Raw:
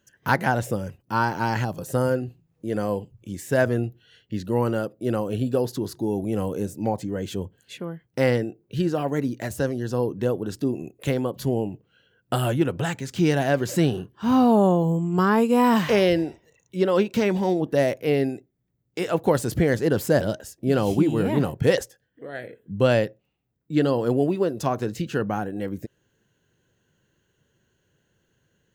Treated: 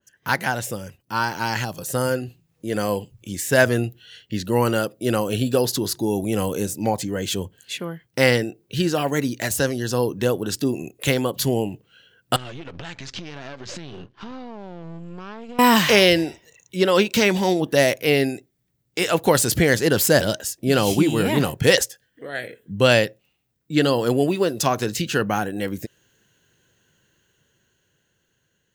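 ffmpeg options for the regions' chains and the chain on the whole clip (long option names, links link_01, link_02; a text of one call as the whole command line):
ffmpeg -i in.wav -filter_complex "[0:a]asettb=1/sr,asplit=3[link_01][link_02][link_03];[link_01]atrim=end=12.364[link_04];[link_02]atrim=start=12.36:end=15.59,asetpts=PTS-STARTPTS,afade=type=in:duration=0.004:curve=qsin,afade=type=out:start_time=3.226:duration=0.004:curve=qsin,aeval=exprs='if(lt(val(0),0),0.251*val(0),val(0))':channel_layout=same,lowpass=frequency=5600:width=0.5412,lowpass=frequency=5600:width=1.3066,acompressor=threshold=-33dB:ratio=20:attack=3.2:release=140:knee=1:detection=peak[link_05];[link_03]atrim=start=15.586[link_06];[link_04][link_05]acrossfade=duration=0.004:curve1=hsin:curve2=qsin[link_07];[link_07][link_06]acrossfade=duration=0.004:curve1=qsin:curve2=hsin,tiltshelf=frequency=1200:gain=-4,dynaudnorm=framelen=420:gausssize=9:maxgain=8dB,adynamicequalizer=threshold=0.02:dfrequency=2000:dqfactor=0.7:tfrequency=2000:tqfactor=0.7:attack=5:release=100:ratio=0.375:range=2.5:mode=boostabove:tftype=highshelf,volume=-1dB" out.wav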